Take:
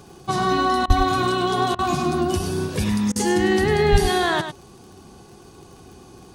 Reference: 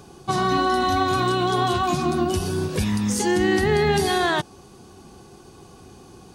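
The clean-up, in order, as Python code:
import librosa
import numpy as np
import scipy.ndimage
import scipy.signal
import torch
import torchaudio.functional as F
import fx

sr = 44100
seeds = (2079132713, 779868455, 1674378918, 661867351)

y = fx.fix_declick_ar(x, sr, threshold=6.5)
y = fx.highpass(y, sr, hz=140.0, slope=24, at=(0.87, 0.99), fade=0.02)
y = fx.highpass(y, sr, hz=140.0, slope=24, at=(3.91, 4.03), fade=0.02)
y = fx.fix_interpolate(y, sr, at_s=(0.86, 1.75, 3.12), length_ms=37.0)
y = fx.fix_echo_inverse(y, sr, delay_ms=101, level_db=-8.5)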